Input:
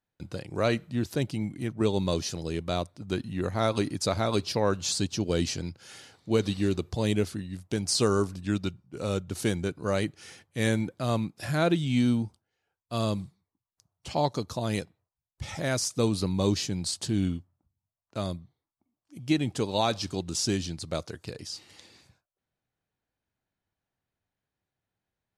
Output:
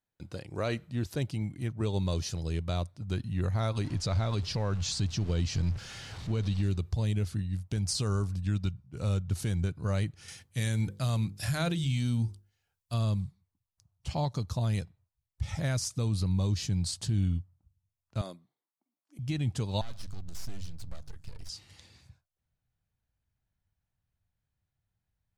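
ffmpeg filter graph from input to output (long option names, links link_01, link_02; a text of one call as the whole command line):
ffmpeg -i in.wav -filter_complex "[0:a]asettb=1/sr,asplit=3[link_01][link_02][link_03];[link_01]atrim=end=3.844[link_04];[link_02]atrim=start=3.84:end=6.63,asetpts=PTS-STARTPTS,afade=type=in:duration=0.004:curve=qsin,afade=type=out:start_time=2.786:duration=0.004:curve=qsin,aeval=exprs='val(0)+0.5*0.0141*sgn(val(0))':channel_layout=same,acrusher=bits=8:mode=log:mix=0:aa=0.000001,lowpass=6500[link_05];[link_03]atrim=start=6.626[link_06];[link_04][link_05]acrossfade=duration=0.004:curve1=hsin:curve2=qsin[link_07];[link_07][link_06]acrossfade=duration=0.004:curve1=qsin:curve2=hsin,asettb=1/sr,asplit=3[link_08][link_09][link_10];[link_08]atrim=end=10.284[link_11];[link_09]atrim=start=10.28:end=12.94,asetpts=PTS-STARTPTS,afade=type=in:duration=0.004:curve=qsin,afade=type=out:start_time=2.656:duration=0.004:curve=qsin,highshelf=frequency=2900:gain=10,bandreject=frequency=50:width_type=h:width=6,bandreject=frequency=100:width_type=h:width=6,bandreject=frequency=150:width_type=h:width=6,bandreject=frequency=200:width_type=h:width=6,bandreject=frequency=250:width_type=h:width=6,bandreject=frequency=300:width_type=h:width=6,bandreject=frequency=350:width_type=h:width=6,bandreject=frequency=400:width_type=h:width=6,bandreject=frequency=450:width_type=h:width=6,bandreject=frequency=500:width_type=h:width=6[link_12];[link_10]atrim=start=12.936[link_13];[link_11][link_12]acrossfade=duration=0.004:curve1=hsin:curve2=qsin[link_14];[link_14][link_13]acrossfade=duration=0.004:curve1=qsin:curve2=hsin,asettb=1/sr,asplit=3[link_15][link_16][link_17];[link_15]atrim=end=18.214[link_18];[link_16]atrim=start=18.21:end=19.19,asetpts=PTS-STARTPTS,afade=type=in:duration=0.004:curve=qsin,afade=type=out:start_time=0.976:duration=0.004:curve=qsin,highpass=frequency=270:width=0.5412,highpass=frequency=270:width=1.3066,equalizer=frequency=4200:width_type=o:width=1.9:gain=-4.5[link_19];[link_17]atrim=start=19.186[link_20];[link_18][link_19]acrossfade=duration=0.004:curve1=hsin:curve2=qsin[link_21];[link_21][link_20]acrossfade=duration=0.004:curve1=qsin:curve2=hsin,asettb=1/sr,asplit=3[link_22][link_23][link_24];[link_22]atrim=end=19.814[link_25];[link_23]atrim=start=19.81:end=21.49,asetpts=PTS-STARTPTS,afade=type=in:duration=0.004:curve=qsin,afade=type=out:start_time=1.676:duration=0.004:curve=qsin,bandreject=frequency=50:width_type=h:width=6,bandreject=frequency=100:width_type=h:width=6,bandreject=frequency=150:width_type=h:width=6,acompressor=threshold=-41dB:ratio=2:attack=3.2:release=140:knee=1:detection=peak,aeval=exprs='max(val(0),0)':channel_layout=same[link_26];[link_24]atrim=start=21.486[link_27];[link_25][link_26]acrossfade=duration=0.004:curve1=hsin:curve2=qsin[link_28];[link_28][link_27]acrossfade=duration=0.004:curve1=qsin:curve2=hsin,asubboost=boost=7:cutoff=120,alimiter=limit=-17dB:level=0:latency=1:release=114,volume=-4dB" out.wav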